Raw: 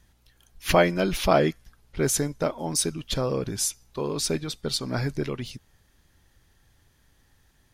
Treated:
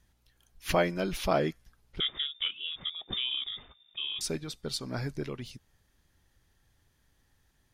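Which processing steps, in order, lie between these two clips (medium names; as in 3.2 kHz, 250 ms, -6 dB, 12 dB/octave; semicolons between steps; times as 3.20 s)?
2.00–4.21 s: frequency inversion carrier 3.6 kHz; trim -7 dB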